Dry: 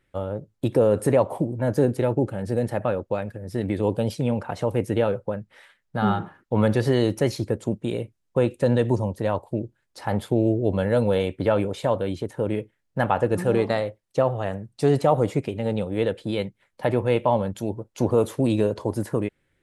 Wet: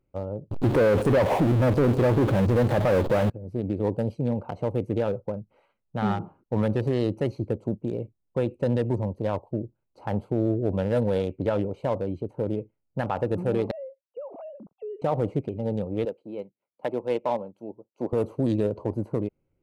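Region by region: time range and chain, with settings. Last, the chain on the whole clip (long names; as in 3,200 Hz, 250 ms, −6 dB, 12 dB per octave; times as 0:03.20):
0:00.51–0:03.30: converter with a step at zero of −26.5 dBFS + low-pass filter 2,500 Hz 6 dB per octave + leveller curve on the samples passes 2
0:13.71–0:15.02: three sine waves on the formant tracks + downward compressor 4 to 1, threshold −33 dBFS
0:16.05–0:18.13: high-pass filter 250 Hz + expander for the loud parts, over −40 dBFS
whole clip: adaptive Wiener filter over 25 samples; brickwall limiter −13 dBFS; level −2 dB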